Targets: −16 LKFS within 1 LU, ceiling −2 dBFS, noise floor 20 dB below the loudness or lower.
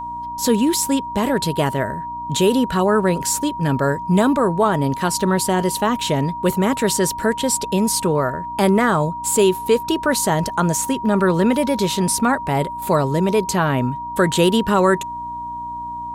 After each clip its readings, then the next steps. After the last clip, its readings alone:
mains hum 60 Hz; hum harmonics up to 300 Hz; level of the hum −40 dBFS; interfering tone 950 Hz; level of the tone −26 dBFS; integrated loudness −18.5 LKFS; sample peak −5.0 dBFS; target loudness −16.0 LKFS
→ hum removal 60 Hz, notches 5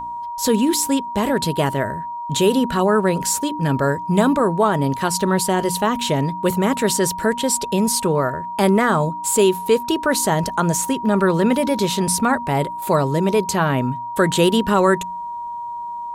mains hum none found; interfering tone 950 Hz; level of the tone −26 dBFS
→ notch filter 950 Hz, Q 30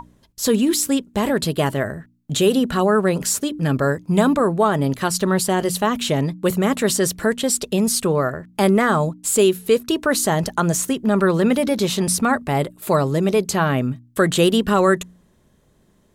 interfering tone none found; integrated loudness −19.5 LKFS; sample peak −4.5 dBFS; target loudness −16.0 LKFS
→ level +3.5 dB
brickwall limiter −2 dBFS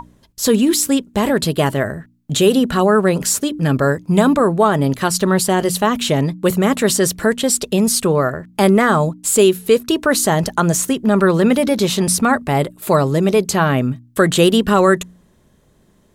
integrated loudness −16.0 LKFS; sample peak −2.0 dBFS; background noise floor −55 dBFS

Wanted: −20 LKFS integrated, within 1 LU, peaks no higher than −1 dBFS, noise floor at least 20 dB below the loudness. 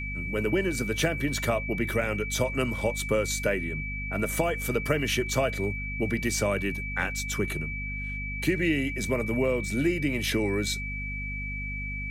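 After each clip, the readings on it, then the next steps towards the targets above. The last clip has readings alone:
mains hum 50 Hz; hum harmonics up to 250 Hz; level of the hum −33 dBFS; interfering tone 2,300 Hz; level of the tone −34 dBFS; integrated loudness −28.0 LKFS; sample peak −11.0 dBFS; target loudness −20.0 LKFS
→ mains-hum notches 50/100/150/200/250 Hz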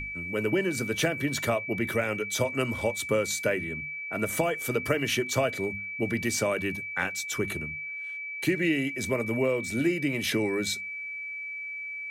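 mains hum none found; interfering tone 2,300 Hz; level of the tone −34 dBFS
→ notch filter 2,300 Hz, Q 30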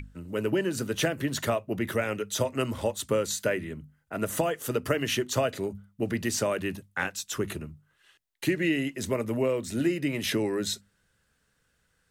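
interfering tone none found; integrated loudness −29.5 LKFS; sample peak −11.0 dBFS; target loudness −20.0 LKFS
→ level +9.5 dB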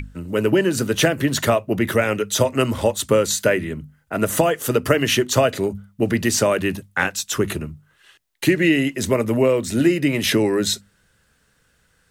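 integrated loudness −20.0 LKFS; sample peak −1.5 dBFS; background noise floor −63 dBFS

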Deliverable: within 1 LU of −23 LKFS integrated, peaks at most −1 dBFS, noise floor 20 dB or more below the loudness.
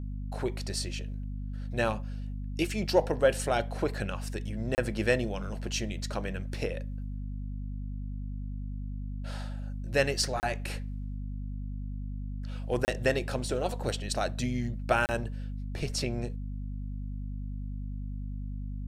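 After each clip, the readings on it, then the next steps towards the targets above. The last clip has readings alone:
number of dropouts 4; longest dropout 29 ms; mains hum 50 Hz; hum harmonics up to 250 Hz; level of the hum −33 dBFS; integrated loudness −33.0 LKFS; sample peak −11.0 dBFS; target loudness −23.0 LKFS
→ repair the gap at 0:04.75/0:10.40/0:12.85/0:15.06, 29 ms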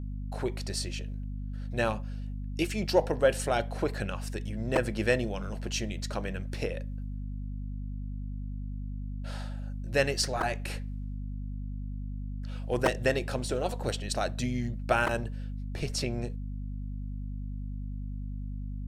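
number of dropouts 0; mains hum 50 Hz; hum harmonics up to 250 Hz; level of the hum −33 dBFS
→ hum removal 50 Hz, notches 5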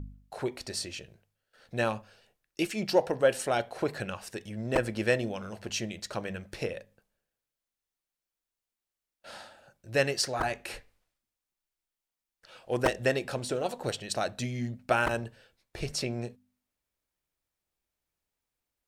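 mains hum none found; integrated loudness −31.5 LKFS; sample peak −11.5 dBFS; target loudness −23.0 LKFS
→ level +8.5 dB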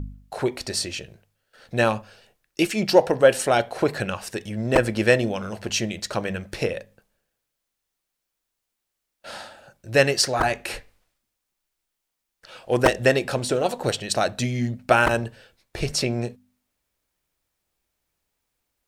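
integrated loudness −23.0 LKFS; sample peak −3.0 dBFS; background noise floor −81 dBFS

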